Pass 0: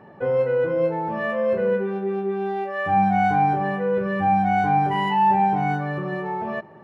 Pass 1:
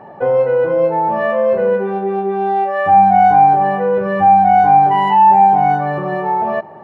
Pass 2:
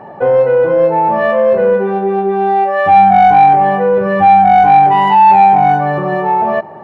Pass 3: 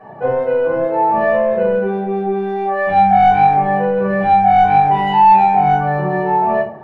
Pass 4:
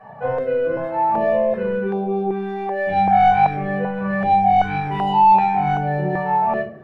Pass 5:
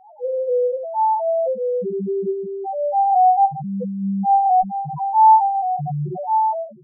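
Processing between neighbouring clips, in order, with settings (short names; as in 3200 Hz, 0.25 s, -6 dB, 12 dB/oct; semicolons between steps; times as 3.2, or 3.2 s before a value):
bell 760 Hz +11 dB 1.1 oct; in parallel at +0.5 dB: compressor, threshold -17 dBFS, peak gain reduction 11 dB; on the sum: gain -2.5 dB
soft clip -5 dBFS, distortion -19 dB; gain +4.5 dB
shoebox room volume 210 m³, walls furnished, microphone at 6 m; gain -14.5 dB
stepped notch 2.6 Hz 340–1800 Hz; gain -2 dB
loudest bins only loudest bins 1; gain +5.5 dB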